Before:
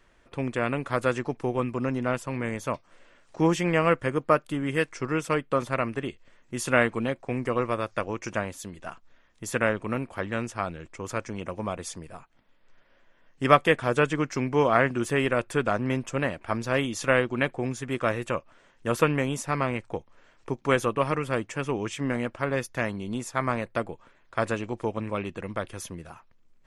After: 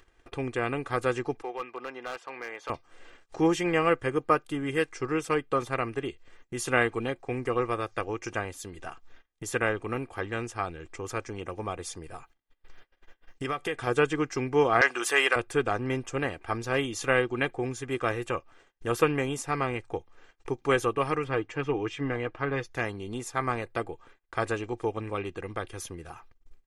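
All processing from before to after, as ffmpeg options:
-filter_complex "[0:a]asettb=1/sr,asplit=3[a][b][c];[a]atrim=end=1.424[d];[b]atrim=start=1.42:end=2.7,asetpts=PTS-STARTPTS,afade=t=in:d=0.004:c=qsin,afade=t=out:st=1.276:d=0.004:c=qsin,highpass=640,lowpass=3.4k,asoftclip=type=hard:threshold=-26.5dB[e];[c]atrim=start=2.696[f];[d][e]acrossfade=d=0.004:c1=hsin:c2=qsin[g];[g][f]acrossfade=d=0.004:c1=qsin:c2=hsin,asettb=1/sr,asplit=3[h][i][j];[h]atrim=end=12.144[k];[i]atrim=start=12.14:end=13.87,asetpts=PTS-STARTPTS,afade=t=in:d=0.004:c=qsin,afade=t=out:st=1.726:d=0.004:c=qsin,acompressor=threshold=-27dB:ratio=4:attack=3.2:release=140:knee=1:detection=peak,highshelf=f=2.6k:g=3.5[l];[j]atrim=start=13.866[m];[k][l]acrossfade=d=0.004:c1=hsin:c2=qsin[n];[n][m]acrossfade=d=0.004:c1=qsin:c2=hsin,asettb=1/sr,asplit=3[o][p][q];[o]atrim=end=14.814[r];[p]atrim=start=14.81:end=15.36,asetpts=PTS-STARTPTS,afade=t=in:d=0.004:c=qsin,afade=t=out:st=0.546:d=0.004:c=qsin,highpass=830,aeval=exprs='0.376*sin(PI/2*1.78*val(0)/0.376)':c=same[s];[q]atrim=start=15.356[t];[r][s]acrossfade=d=0.004:c1=hsin:c2=qsin[u];[u][t]acrossfade=d=0.004:c1=qsin:c2=hsin,asettb=1/sr,asplit=3[v][w][x];[v]atrim=end=21.244[y];[w]atrim=start=21.24:end=22.71,asetpts=PTS-STARTPTS,afade=t=in:d=0.004:c=qsin,afade=t=out:st=1.466:d=0.004:c=qsin,lowpass=3.8k,aecho=1:1:6.5:0.38,atrim=end_sample=64827[z];[x]atrim=start=22.706[aa];[y][z]acrossfade=d=0.004:c1=hsin:c2=qsin[ab];[ab][aa]acrossfade=d=0.004:c1=qsin:c2=hsin,agate=range=-35dB:threshold=-55dB:ratio=16:detection=peak,aecho=1:1:2.5:0.54,acompressor=mode=upward:threshold=-33dB:ratio=2.5,volume=-2.5dB"

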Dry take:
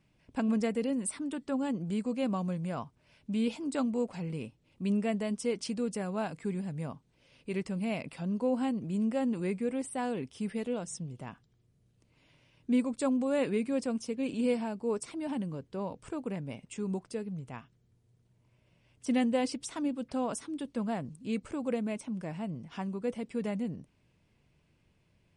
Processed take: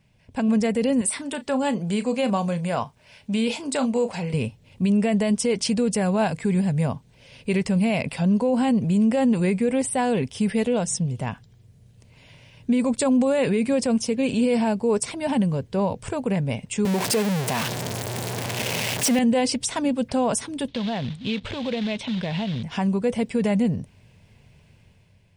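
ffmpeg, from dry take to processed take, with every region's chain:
-filter_complex "[0:a]asettb=1/sr,asplit=3[a][b][c];[a]atrim=end=1.014[d];[b]atrim=start=1.01:end=4.34,asetpts=PTS-STARTPTS,afade=t=in:d=0.004:c=qsin,afade=t=out:st=3.326:d=0.004:c=qsin,lowshelf=f=250:g=-10.5,asplit=2[e][f];[f]adelay=35,volume=-12.5dB[g];[e][g]amix=inputs=2:normalize=0,atrim=end_sample=146853[h];[c]atrim=start=4.336[i];[d][h]acrossfade=d=0.004:c1=hsin:c2=qsin[j];[j][i]acrossfade=d=0.004:c1=qsin:c2=hsin,asettb=1/sr,asplit=3[k][l][m];[k]atrim=end=16.854[n];[l]atrim=start=16.85:end=19.19,asetpts=PTS-STARTPTS,afade=t=in:d=0.004:c=qsin,afade=t=out:st=2.336:d=0.004:c=qsin,aeval=exprs='val(0)+0.5*0.0251*sgn(val(0))':c=same,highpass=220[o];[m]atrim=start=19.186[p];[n][o]acrossfade=d=0.004:c1=hsin:c2=qsin[q];[q][p]acrossfade=d=0.004:c1=qsin:c2=hsin,asettb=1/sr,asplit=3[r][s][t];[r]atrim=end=20.684[u];[s]atrim=start=20.68:end=22.63,asetpts=PTS-STARTPTS,afade=t=in:d=0.004:c=qsin,afade=t=out:st=1.946:d=0.004:c=qsin,acrusher=bits=4:mode=log:mix=0:aa=0.000001,acompressor=threshold=-37dB:ratio=5:attack=3.2:release=140:knee=1:detection=peak,lowpass=f=3.6k:t=q:w=4.4[v];[t]atrim=start=22.626[w];[u][v]acrossfade=d=0.004:c1=hsin:c2=qsin[x];[x][w]acrossfade=d=0.004:c1=qsin:c2=hsin,equalizer=f=100:t=o:w=0.33:g=7,equalizer=f=315:t=o:w=0.33:g=-12,equalizer=f=1.25k:t=o:w=0.33:g=-7,dynaudnorm=f=270:g=5:m=7.5dB,alimiter=limit=-21dB:level=0:latency=1:release=41,volume=7.5dB"

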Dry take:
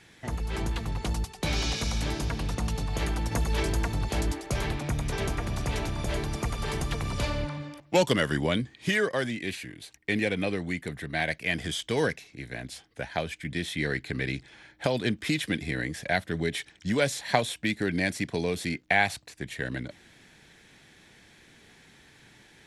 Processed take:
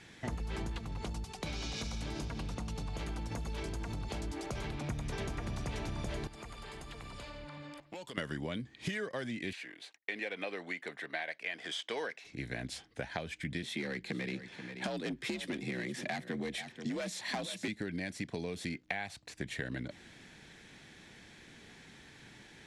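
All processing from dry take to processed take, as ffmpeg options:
-filter_complex "[0:a]asettb=1/sr,asplit=3[a][b][c];[a]atrim=end=0.784[d];[b]atrim=start=0.78:end=4.9,asetpts=PTS-STARTPTS,afade=t=in:d=0.004:c=qsin,afade=t=out:st=4.116:d=0.004:c=qsin,bandreject=f=1.8k:w=15,acompressor=threshold=-35dB:ratio=4:attack=3.2:release=140:knee=1:detection=peak[e];[c]atrim=start=4.896[f];[d][e]acrossfade=d=0.004:c1=hsin:c2=qsin[g];[g][f]acrossfade=d=0.004:c1=qsin:c2=hsin,asettb=1/sr,asplit=3[h][i][j];[h]atrim=end=6.274[k];[i]atrim=start=6.27:end=8.18,asetpts=PTS-STARTPTS,afade=t=in:d=0.004:c=qsin,afade=t=out:st=1.906:d=0.004:c=qsin,equalizer=f=110:w=0.34:g=-8.5,bandreject=f=5.8k:w=6.8,acompressor=threshold=-44dB:ratio=6:attack=3.2:release=140:knee=1:detection=peak[l];[j]atrim=start=8.176[m];[k][l]acrossfade=d=0.004:c1=hsin:c2=qsin[n];[n][m]acrossfade=d=0.004:c1=qsin:c2=hsin,asettb=1/sr,asplit=3[o][p][q];[o]atrim=end=9.534[r];[p]atrim=start=9.53:end=12.25,asetpts=PTS-STARTPTS,afade=t=in:d=0.004:c=qsin,afade=t=out:st=2.716:d=0.004:c=qsin,agate=range=-33dB:threshold=-53dB:ratio=3:release=100:detection=peak,highpass=570,aemphasis=mode=reproduction:type=50kf[s];[q]atrim=start=12.246[t];[r][s]acrossfade=d=0.004:c1=hsin:c2=qsin[u];[u][t]acrossfade=d=0.004:c1=qsin:c2=hsin,asettb=1/sr,asplit=3[v][w][x];[v]atrim=end=13.634[y];[w]atrim=start=13.63:end=17.68,asetpts=PTS-STARTPTS,afade=t=in:d=0.004:c=qsin,afade=t=out:st=4.046:d=0.004:c=qsin,asoftclip=type=hard:threshold=-23.5dB,afreqshift=53,aecho=1:1:483:0.168,atrim=end_sample=178605[z];[x]atrim=start=17.676[aa];[y][z]acrossfade=d=0.004:c1=hsin:c2=qsin[ab];[ab][aa]acrossfade=d=0.004:c1=qsin:c2=hsin,lowpass=9.3k,equalizer=f=220:w=1.5:g=2.5,acompressor=threshold=-34dB:ratio=12"

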